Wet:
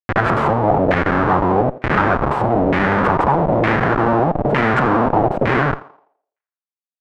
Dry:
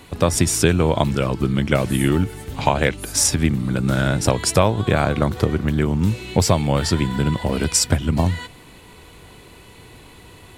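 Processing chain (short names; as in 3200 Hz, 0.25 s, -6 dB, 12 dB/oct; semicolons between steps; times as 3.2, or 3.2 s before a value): speed glide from 129% -> 173%; in parallel at -0.5 dB: compressor 10:1, threshold -28 dBFS, peak gain reduction 18 dB; on the sum: bell 4100 Hz -7.5 dB 1.1 oct; reverb RT60 0.55 s, pre-delay 35 ms, DRR 17 dB; Schmitt trigger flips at -22.5 dBFS; low shelf 180 Hz -11 dB; thinning echo 84 ms, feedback 43%, high-pass 270 Hz, level -15.5 dB; LFO low-pass saw down 1.1 Hz 570–2100 Hz; gain +5.5 dB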